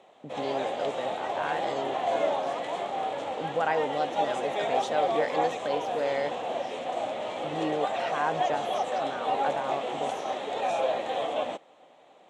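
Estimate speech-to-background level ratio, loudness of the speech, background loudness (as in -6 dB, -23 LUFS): -3.0 dB, -33.5 LUFS, -30.5 LUFS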